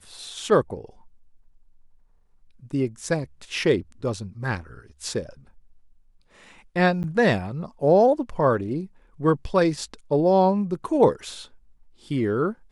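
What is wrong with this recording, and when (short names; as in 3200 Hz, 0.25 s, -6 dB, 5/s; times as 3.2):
7.03–7.04 gap 9.7 ms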